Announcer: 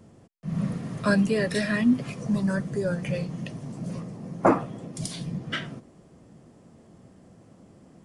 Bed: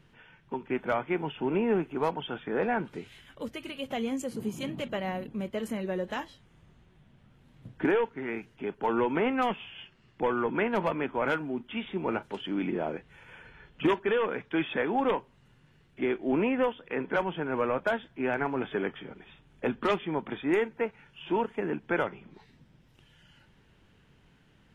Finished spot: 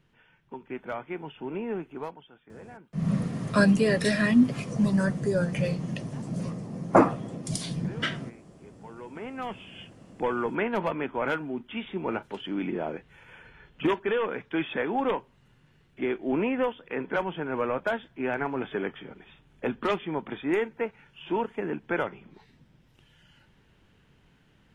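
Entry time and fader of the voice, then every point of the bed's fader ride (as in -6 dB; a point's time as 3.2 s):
2.50 s, +1.5 dB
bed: 2 s -6 dB
2.3 s -19 dB
8.87 s -19 dB
9.8 s 0 dB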